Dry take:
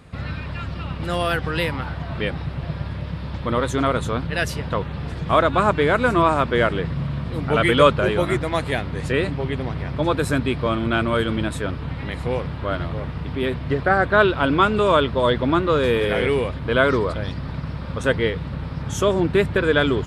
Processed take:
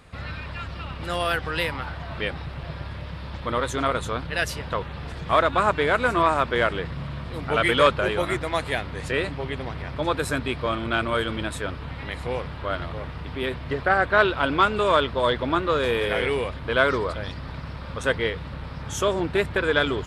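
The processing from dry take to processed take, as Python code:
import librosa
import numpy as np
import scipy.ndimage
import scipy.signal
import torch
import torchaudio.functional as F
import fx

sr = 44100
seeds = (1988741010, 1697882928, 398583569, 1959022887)

y = fx.peak_eq(x, sr, hz=170.0, db=-8.0, octaves=2.6)
y = fx.transformer_sat(y, sr, knee_hz=750.0)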